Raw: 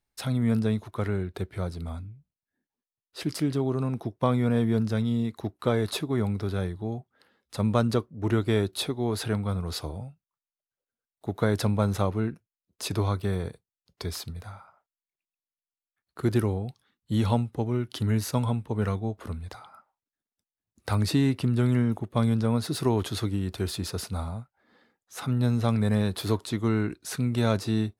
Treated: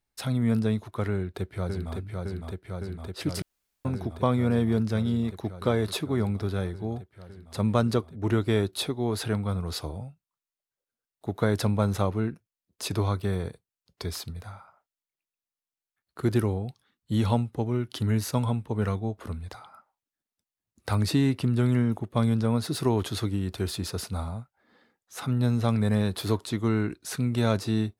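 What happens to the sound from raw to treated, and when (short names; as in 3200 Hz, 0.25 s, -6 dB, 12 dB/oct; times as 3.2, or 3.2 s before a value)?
1.13–1.95 echo throw 0.56 s, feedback 85%, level -3.5 dB
3.42–3.85 room tone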